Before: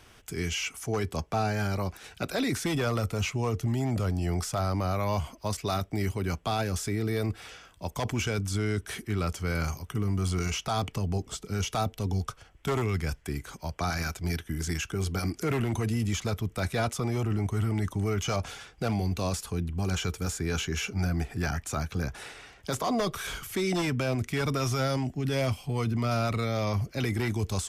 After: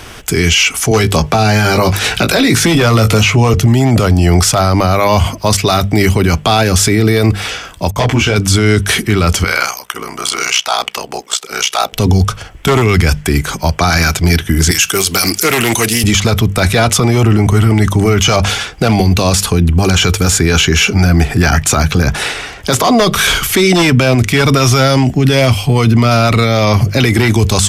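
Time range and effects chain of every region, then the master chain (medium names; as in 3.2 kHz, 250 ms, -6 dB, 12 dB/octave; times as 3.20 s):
0.91–3.54 s: doubling 18 ms -8 dB + three bands compressed up and down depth 70%
7.91–8.36 s: expander -50 dBFS + treble shelf 5.6 kHz -9 dB + detune thickener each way 38 cents
9.44–11.93 s: high-pass 720 Hz + ring modulator 31 Hz
14.71–16.04 s: RIAA curve recording + loudspeaker Doppler distortion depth 0.1 ms
whole clip: hum notches 50/100/150/200 Hz; dynamic bell 3.3 kHz, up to +4 dB, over -48 dBFS, Q 0.9; loudness maximiser +24.5 dB; trim -1 dB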